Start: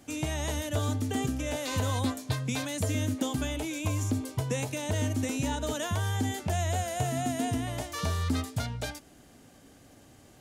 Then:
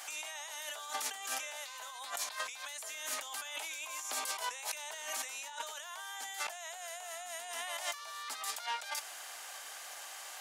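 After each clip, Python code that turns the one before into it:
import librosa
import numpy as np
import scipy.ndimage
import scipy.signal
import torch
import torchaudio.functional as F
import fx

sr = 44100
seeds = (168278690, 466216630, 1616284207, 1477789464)

y = scipy.signal.sosfilt(scipy.signal.butter(4, 840.0, 'highpass', fs=sr, output='sos'), x)
y = fx.over_compress(y, sr, threshold_db=-49.0, ratio=-1.0)
y = F.gain(torch.from_numpy(y), 6.5).numpy()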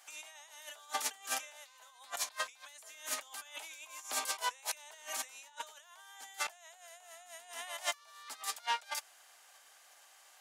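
y = fx.low_shelf(x, sr, hz=94.0, db=7.0)
y = fx.upward_expand(y, sr, threshold_db=-47.0, expansion=2.5)
y = F.gain(torch.from_numpy(y), 5.0).numpy()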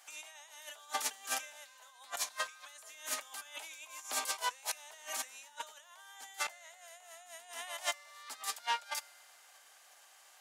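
y = fx.comb_fb(x, sr, f0_hz=83.0, decay_s=2.0, harmonics='odd', damping=0.0, mix_pct=50)
y = F.gain(torch.from_numpy(y), 6.0).numpy()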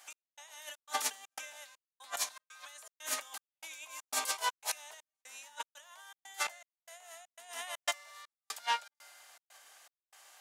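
y = fx.step_gate(x, sr, bpm=120, pattern='x..xxx.xxx.xx', floor_db=-60.0, edge_ms=4.5)
y = F.gain(torch.from_numpy(y), 2.0).numpy()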